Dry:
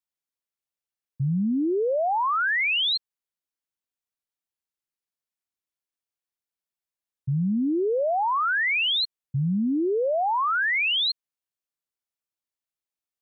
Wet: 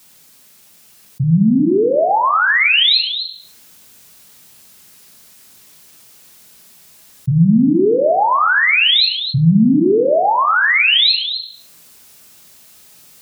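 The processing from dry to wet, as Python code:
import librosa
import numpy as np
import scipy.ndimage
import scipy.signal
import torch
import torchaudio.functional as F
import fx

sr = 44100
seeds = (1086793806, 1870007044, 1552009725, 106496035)

p1 = fx.peak_eq(x, sr, hz=140.0, db=7.0, octaves=2.7)
p2 = p1 + fx.echo_single(p1, sr, ms=255, db=-19.0, dry=0)
p3 = fx.room_shoebox(p2, sr, seeds[0], volume_m3=570.0, walls='furnished', distance_m=1.4)
p4 = fx.rider(p3, sr, range_db=10, speed_s=2.0)
p5 = scipy.signal.sosfilt(scipy.signal.butter(2, 47.0, 'highpass', fs=sr, output='sos'), p4)
p6 = fx.high_shelf(p5, sr, hz=2800.0, db=8.0)
y = fx.env_flatten(p6, sr, amount_pct=50)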